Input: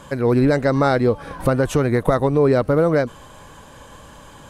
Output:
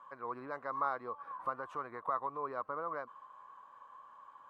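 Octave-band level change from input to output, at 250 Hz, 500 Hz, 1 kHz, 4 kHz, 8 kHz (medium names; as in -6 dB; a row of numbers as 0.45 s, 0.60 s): -33.0 dB, -26.0 dB, -11.0 dB, under -30 dB, under -35 dB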